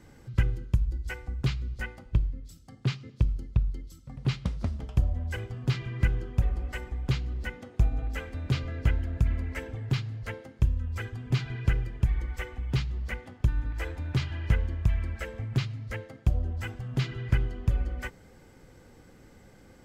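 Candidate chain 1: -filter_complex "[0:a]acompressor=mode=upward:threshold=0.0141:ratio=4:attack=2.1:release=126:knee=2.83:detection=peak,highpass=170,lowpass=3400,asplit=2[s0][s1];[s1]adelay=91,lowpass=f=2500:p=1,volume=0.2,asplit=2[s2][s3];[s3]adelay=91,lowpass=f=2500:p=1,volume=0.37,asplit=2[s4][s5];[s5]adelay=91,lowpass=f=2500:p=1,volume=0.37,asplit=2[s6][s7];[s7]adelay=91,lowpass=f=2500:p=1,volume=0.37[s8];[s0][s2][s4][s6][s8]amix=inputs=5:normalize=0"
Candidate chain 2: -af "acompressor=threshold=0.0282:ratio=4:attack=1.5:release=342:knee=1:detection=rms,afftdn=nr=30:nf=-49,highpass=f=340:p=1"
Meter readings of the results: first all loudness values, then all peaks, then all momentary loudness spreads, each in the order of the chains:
-38.5 LUFS, -47.5 LUFS; -18.5 dBFS, -26.0 dBFS; 10 LU, 10 LU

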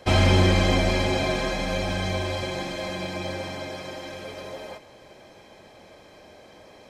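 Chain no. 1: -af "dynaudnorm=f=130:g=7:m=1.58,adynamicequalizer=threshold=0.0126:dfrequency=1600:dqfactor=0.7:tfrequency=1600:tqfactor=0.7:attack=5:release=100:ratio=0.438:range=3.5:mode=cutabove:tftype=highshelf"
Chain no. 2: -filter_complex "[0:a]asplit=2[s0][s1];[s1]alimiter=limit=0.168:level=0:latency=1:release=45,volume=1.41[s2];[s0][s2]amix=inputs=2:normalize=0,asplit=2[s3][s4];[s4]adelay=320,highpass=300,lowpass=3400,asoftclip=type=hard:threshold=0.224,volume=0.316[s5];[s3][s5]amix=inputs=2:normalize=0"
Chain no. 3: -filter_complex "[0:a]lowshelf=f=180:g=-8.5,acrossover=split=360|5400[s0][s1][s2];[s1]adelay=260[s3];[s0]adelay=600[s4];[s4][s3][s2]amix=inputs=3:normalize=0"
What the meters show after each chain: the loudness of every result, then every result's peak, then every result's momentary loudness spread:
-23.5 LUFS, -19.0 LUFS, -28.0 LUFS; -6.0 dBFS, -3.5 dBFS, -11.0 dBFS; 16 LU, 16 LU, 16 LU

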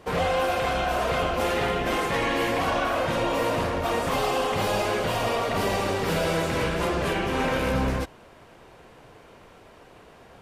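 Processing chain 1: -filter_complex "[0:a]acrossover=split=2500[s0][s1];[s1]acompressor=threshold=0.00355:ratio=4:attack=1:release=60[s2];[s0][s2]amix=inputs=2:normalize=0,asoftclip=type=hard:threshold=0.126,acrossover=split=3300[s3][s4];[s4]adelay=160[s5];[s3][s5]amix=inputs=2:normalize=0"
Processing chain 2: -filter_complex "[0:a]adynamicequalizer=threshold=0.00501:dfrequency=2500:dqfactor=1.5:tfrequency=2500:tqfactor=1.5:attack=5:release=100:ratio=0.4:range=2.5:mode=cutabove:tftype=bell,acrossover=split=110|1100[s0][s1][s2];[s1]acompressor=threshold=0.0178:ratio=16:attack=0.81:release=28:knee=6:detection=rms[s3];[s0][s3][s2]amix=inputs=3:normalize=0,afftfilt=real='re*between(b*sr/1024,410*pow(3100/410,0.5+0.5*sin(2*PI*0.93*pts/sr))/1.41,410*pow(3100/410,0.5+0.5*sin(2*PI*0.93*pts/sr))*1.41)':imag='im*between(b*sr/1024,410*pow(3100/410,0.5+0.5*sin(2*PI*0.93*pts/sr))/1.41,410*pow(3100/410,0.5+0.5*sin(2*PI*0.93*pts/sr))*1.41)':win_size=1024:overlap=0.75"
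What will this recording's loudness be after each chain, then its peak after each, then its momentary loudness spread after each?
-26.0 LUFS, -38.5 LUFS; -17.0 dBFS, -23.5 dBFS; 1 LU, 20 LU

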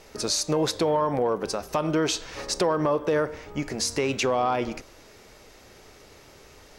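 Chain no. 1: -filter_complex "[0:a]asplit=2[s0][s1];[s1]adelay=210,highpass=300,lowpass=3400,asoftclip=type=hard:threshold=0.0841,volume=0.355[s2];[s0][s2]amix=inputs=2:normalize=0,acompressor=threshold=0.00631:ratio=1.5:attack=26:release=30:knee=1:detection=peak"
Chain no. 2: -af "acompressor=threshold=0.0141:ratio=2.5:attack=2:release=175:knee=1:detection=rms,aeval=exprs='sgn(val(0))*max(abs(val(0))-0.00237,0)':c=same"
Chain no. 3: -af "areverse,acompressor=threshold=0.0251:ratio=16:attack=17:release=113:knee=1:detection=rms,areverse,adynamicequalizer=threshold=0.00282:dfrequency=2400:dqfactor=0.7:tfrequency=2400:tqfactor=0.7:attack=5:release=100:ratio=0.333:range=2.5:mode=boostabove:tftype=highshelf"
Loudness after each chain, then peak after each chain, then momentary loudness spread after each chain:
-31.5 LUFS, -38.5 LUFS, -33.5 LUFS; -18.5 dBFS, -24.5 dBFS, -17.0 dBFS; 20 LU, 19 LU, 19 LU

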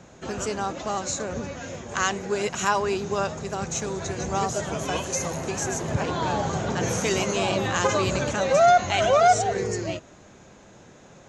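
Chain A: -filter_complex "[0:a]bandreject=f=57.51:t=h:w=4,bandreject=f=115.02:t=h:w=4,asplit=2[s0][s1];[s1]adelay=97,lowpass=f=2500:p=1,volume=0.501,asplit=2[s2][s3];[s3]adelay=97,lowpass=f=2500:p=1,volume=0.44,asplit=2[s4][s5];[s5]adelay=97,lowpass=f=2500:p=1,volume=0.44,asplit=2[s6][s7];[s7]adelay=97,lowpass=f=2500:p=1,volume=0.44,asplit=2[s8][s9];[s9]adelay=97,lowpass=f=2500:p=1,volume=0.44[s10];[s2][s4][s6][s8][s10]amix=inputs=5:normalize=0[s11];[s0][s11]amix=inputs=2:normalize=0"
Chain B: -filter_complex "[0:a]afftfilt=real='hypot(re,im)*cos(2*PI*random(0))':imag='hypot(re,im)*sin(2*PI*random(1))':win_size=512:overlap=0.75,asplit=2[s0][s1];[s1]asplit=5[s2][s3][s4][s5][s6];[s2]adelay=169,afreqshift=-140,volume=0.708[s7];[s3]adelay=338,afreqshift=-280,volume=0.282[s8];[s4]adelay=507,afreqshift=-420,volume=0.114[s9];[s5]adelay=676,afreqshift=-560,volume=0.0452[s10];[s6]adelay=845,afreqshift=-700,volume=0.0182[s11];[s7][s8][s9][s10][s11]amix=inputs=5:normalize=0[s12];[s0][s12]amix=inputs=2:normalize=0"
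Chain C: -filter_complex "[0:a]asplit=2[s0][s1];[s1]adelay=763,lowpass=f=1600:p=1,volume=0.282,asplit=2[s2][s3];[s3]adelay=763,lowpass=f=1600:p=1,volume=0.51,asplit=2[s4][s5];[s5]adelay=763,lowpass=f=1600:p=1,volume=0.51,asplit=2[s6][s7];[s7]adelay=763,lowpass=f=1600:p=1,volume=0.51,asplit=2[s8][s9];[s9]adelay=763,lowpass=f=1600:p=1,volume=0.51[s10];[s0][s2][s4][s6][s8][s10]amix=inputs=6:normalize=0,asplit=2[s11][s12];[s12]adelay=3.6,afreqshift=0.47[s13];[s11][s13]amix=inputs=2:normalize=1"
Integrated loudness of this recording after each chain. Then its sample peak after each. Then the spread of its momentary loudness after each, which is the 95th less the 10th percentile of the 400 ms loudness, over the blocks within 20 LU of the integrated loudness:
-24.0 LUFS, -29.0 LUFS, -28.0 LUFS; -6.0 dBFS, -9.5 dBFS, -11.0 dBFS; 12 LU, 12 LU, 13 LU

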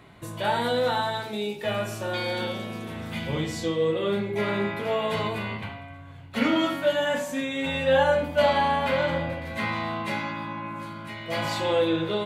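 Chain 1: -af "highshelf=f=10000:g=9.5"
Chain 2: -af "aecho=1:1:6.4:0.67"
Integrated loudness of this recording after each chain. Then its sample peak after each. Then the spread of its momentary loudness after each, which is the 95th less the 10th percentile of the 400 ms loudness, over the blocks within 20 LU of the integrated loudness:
-26.5 LUFS, -25.5 LUFS; -9.5 dBFS, -9.0 dBFS; 13 LU, 13 LU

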